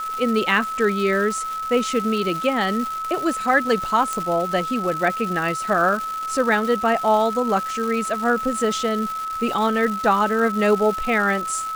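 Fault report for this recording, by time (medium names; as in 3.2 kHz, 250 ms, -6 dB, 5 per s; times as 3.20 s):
crackle 480 per s -27 dBFS
whine 1.3 kHz -25 dBFS
4.13 s: pop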